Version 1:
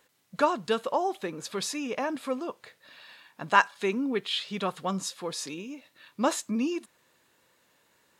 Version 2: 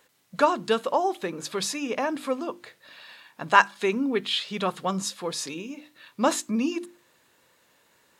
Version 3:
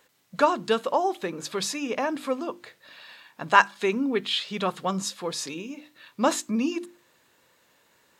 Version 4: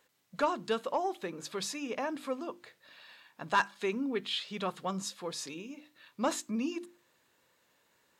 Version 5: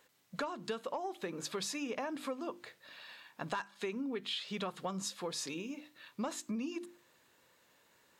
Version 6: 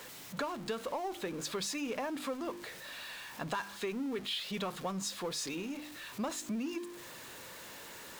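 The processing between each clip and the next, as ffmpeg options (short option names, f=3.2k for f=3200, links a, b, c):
-af "bandreject=f=50:t=h:w=6,bandreject=f=100:t=h:w=6,bandreject=f=150:t=h:w=6,bandreject=f=200:t=h:w=6,bandreject=f=250:t=h:w=6,bandreject=f=300:t=h:w=6,bandreject=f=350:t=h:w=6,volume=3.5dB"
-af "equalizer=f=10k:w=3.6:g=-3.5"
-af "asoftclip=type=tanh:threshold=-10dB,volume=-7.5dB"
-af "acompressor=threshold=-37dB:ratio=16,volume=2.5dB"
-af "aeval=exprs='val(0)+0.5*0.00668*sgn(val(0))':c=same"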